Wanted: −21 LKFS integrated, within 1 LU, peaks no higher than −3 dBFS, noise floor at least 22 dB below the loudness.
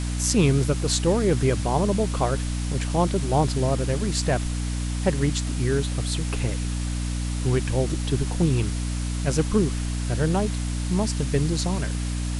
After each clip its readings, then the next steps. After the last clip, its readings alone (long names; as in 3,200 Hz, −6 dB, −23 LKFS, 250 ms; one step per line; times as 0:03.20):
mains hum 60 Hz; hum harmonics up to 300 Hz; level of the hum −24 dBFS; background noise floor −27 dBFS; target noise floor −47 dBFS; integrated loudness −24.5 LKFS; sample peak −3.5 dBFS; target loudness −21.0 LKFS
→ mains-hum notches 60/120/180/240/300 Hz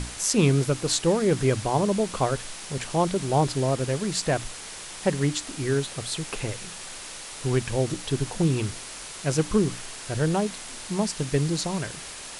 mains hum none found; background noise floor −39 dBFS; target noise floor −48 dBFS
→ broadband denoise 9 dB, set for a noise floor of −39 dBFS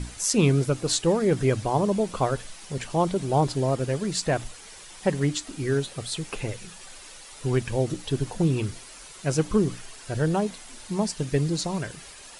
background noise floor −45 dBFS; target noise floor −48 dBFS
→ broadband denoise 6 dB, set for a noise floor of −45 dBFS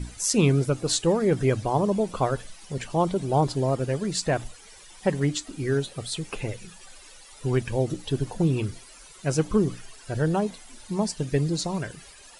background noise floor −49 dBFS; integrated loudness −26.0 LKFS; sample peak −5.0 dBFS; target loudness −21.0 LKFS
→ level +5 dB
brickwall limiter −3 dBFS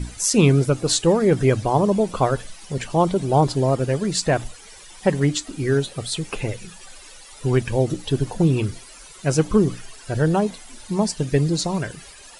integrated loudness −21.0 LKFS; sample peak −3.0 dBFS; background noise floor −44 dBFS